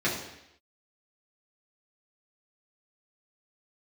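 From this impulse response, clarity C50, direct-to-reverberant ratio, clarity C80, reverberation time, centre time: 5.0 dB, −7.5 dB, 7.5 dB, 0.80 s, 43 ms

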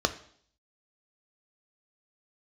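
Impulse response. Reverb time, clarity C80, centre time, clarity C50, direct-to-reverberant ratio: 0.60 s, 17.5 dB, 6 ms, 14.5 dB, 8.0 dB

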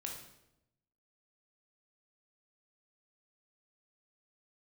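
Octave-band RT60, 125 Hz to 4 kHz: 1.2, 1.0, 0.95, 0.75, 0.75, 0.70 seconds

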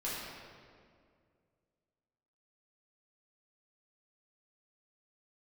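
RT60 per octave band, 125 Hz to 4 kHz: 2.7, 2.5, 2.4, 1.9, 1.7, 1.4 seconds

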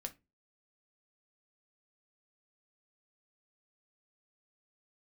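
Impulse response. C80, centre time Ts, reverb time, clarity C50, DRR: 28.0 dB, 5 ms, 0.25 s, 18.0 dB, 5.0 dB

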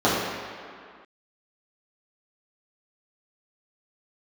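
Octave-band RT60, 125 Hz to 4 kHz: 1.6 s, 2.0 s, 2.0 s, 2.3 s, can't be measured, 1.6 s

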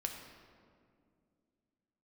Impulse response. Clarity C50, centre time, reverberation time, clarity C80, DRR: 5.0 dB, 45 ms, 2.3 s, 6.0 dB, 2.5 dB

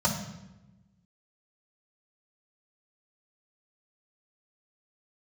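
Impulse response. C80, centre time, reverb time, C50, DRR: 9.0 dB, 27 ms, 0.95 s, 6.5 dB, −1.5 dB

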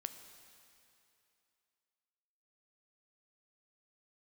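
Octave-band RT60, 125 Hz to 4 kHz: 2.5, 2.6, 2.7, 2.8, 2.7, 2.6 seconds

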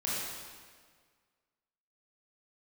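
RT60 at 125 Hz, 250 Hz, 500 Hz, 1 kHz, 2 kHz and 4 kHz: 1.8, 1.8, 1.8, 1.7, 1.6, 1.4 seconds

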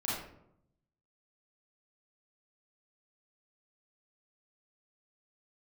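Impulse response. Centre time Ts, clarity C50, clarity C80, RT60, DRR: 63 ms, −0.5 dB, 4.5 dB, 0.75 s, −8.0 dB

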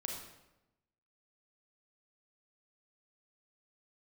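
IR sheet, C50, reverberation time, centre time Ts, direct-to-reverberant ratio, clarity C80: 2.5 dB, 0.95 s, 46 ms, 0.0 dB, 5.5 dB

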